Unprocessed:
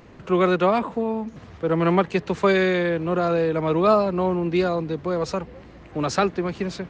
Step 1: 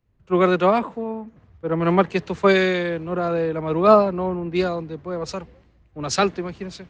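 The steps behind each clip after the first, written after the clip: three-band expander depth 100%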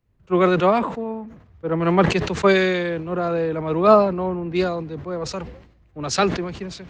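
sustainer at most 80 dB/s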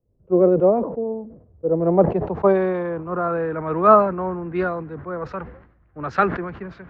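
low-pass sweep 520 Hz -> 1500 Hz, 1.68–3.48; gain -2.5 dB

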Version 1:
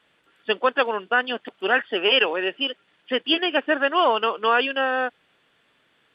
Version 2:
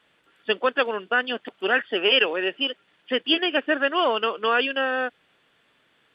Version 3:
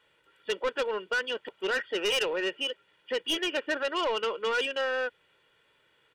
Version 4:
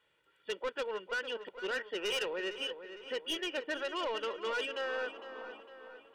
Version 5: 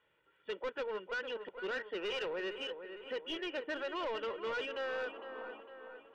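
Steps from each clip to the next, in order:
dynamic EQ 890 Hz, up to -6 dB, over -33 dBFS, Q 1.9
comb 2.1 ms, depth 59%; soft clip -19 dBFS, distortion -10 dB; gain -4.5 dB
painted sound noise, 4.82–5.61, 210–1300 Hz -47 dBFS; darkening echo 0.456 s, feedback 55%, low-pass 4000 Hz, level -11 dB; gain -7 dB
running mean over 8 samples; soft clip -33.5 dBFS, distortion -17 dB; gain +1 dB

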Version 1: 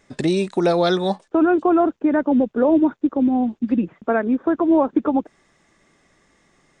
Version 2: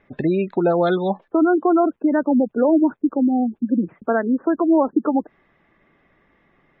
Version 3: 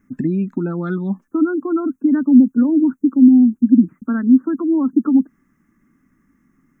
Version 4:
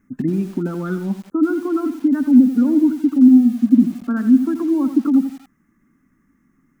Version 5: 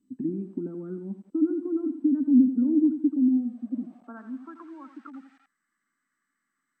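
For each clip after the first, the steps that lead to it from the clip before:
spectral gate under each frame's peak -25 dB strong; LPF 2900 Hz 24 dB/oct
EQ curve 140 Hz 0 dB, 260 Hz +10 dB, 430 Hz -14 dB, 700 Hz -21 dB, 1300 Hz -2 dB, 3900 Hz -21 dB, 6200 Hz +15 dB
lo-fi delay 85 ms, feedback 35%, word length 6-bit, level -10 dB; gain -1 dB
band-pass sweep 290 Hz -> 1600 Hz, 3.01–4.87; gain -6 dB; MP2 96 kbps 32000 Hz

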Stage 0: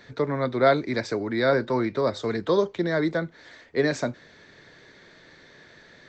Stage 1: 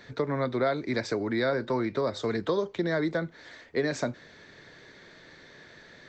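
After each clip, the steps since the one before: compressor 4:1, threshold -24 dBFS, peak gain reduction 9 dB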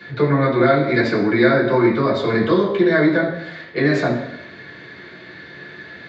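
reverb RT60 0.85 s, pre-delay 3 ms, DRR -6.5 dB; gain -4 dB

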